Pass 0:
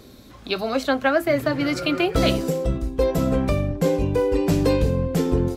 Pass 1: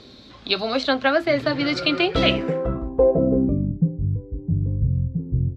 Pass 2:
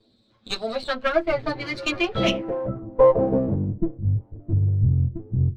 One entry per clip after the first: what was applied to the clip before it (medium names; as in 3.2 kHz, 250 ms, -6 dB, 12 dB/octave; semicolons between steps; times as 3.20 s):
bass shelf 72 Hz -7 dB; low-pass sweep 4.1 kHz -> 120 Hz, 2.10–3.98 s
comb filter that takes the minimum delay 9.1 ms; spectral contrast expander 1.5:1; trim -1 dB